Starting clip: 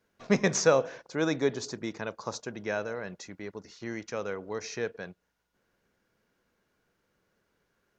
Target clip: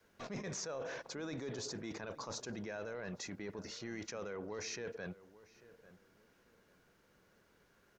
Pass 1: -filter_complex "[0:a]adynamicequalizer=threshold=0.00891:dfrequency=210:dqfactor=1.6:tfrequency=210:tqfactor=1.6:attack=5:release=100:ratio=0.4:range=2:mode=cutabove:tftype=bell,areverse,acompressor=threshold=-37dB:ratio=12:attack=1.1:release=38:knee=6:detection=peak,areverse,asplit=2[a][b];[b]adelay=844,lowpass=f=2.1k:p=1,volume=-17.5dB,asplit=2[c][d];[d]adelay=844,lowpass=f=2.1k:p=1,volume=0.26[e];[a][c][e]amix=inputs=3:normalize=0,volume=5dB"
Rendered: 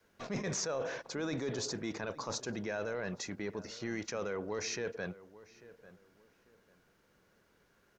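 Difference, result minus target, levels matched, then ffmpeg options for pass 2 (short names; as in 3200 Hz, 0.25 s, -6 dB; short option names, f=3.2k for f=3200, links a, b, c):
compressor: peak gain reduction -6.5 dB
-filter_complex "[0:a]adynamicequalizer=threshold=0.00891:dfrequency=210:dqfactor=1.6:tfrequency=210:tqfactor=1.6:attack=5:release=100:ratio=0.4:range=2:mode=cutabove:tftype=bell,areverse,acompressor=threshold=-44dB:ratio=12:attack=1.1:release=38:knee=6:detection=peak,areverse,asplit=2[a][b];[b]adelay=844,lowpass=f=2.1k:p=1,volume=-17.5dB,asplit=2[c][d];[d]adelay=844,lowpass=f=2.1k:p=1,volume=0.26[e];[a][c][e]amix=inputs=3:normalize=0,volume=5dB"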